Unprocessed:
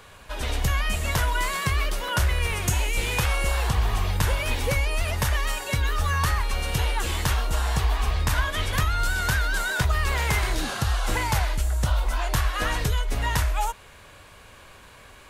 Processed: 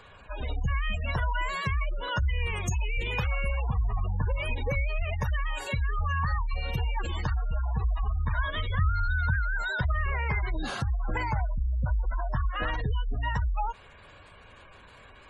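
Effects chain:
in parallel at −4 dB: soft clipping −20.5 dBFS, distortion −15 dB
0:08.70–0:09.35: on the sum: parametric band 81 Hz +8.5 dB 0.46 octaves
gate on every frequency bin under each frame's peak −20 dB strong
level −7 dB

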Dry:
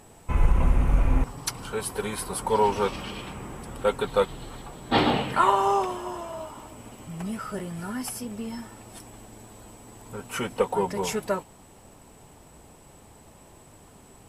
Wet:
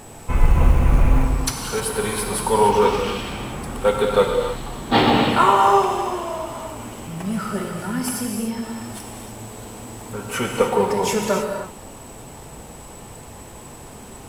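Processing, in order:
mu-law and A-law mismatch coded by mu
reverb whose tail is shaped and stops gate 330 ms flat, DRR 1.5 dB
level +4 dB

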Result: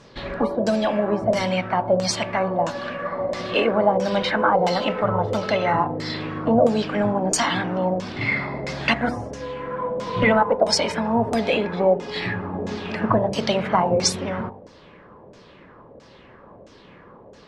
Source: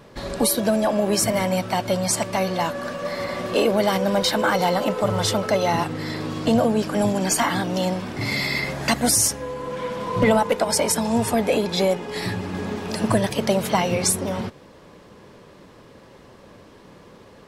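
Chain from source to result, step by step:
hum removal 48.74 Hz, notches 21
auto-filter low-pass saw down 1.5 Hz 530–6,800 Hz
level −1 dB

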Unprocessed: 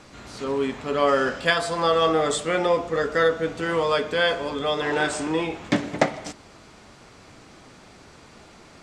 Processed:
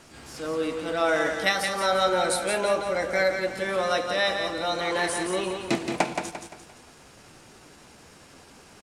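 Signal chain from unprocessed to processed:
high-shelf EQ 6,100 Hz +8 dB
pitch shifter +2.5 semitones
on a send: repeating echo 173 ms, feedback 39%, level −6 dB
on the sum: level −4 dB

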